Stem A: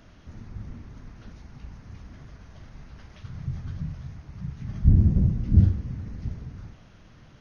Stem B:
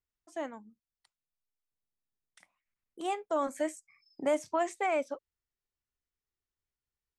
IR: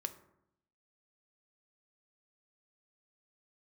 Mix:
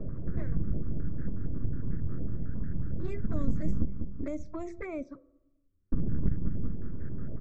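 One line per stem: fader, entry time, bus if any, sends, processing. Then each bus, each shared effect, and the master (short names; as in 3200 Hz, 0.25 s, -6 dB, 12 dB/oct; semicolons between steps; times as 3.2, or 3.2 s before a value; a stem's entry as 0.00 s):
+1.0 dB, 0.00 s, muted 3.85–5.92, no send, echo send -9.5 dB, Wiener smoothing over 41 samples; full-wave rectifier; stepped low-pass 11 Hz 680–1700 Hz
-6.5 dB, 0.00 s, send -9.5 dB, no echo send, low-pass opened by the level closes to 690 Hz, open at -26 dBFS; de-hum 170.9 Hz, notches 4; envelope flanger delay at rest 11 ms, full sweep at -27 dBFS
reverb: on, RT60 0.80 s, pre-delay 3 ms
echo: feedback echo 0.194 s, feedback 41%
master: low shelf 360 Hz +11 dB; fixed phaser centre 3000 Hz, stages 6; three-band squash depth 70%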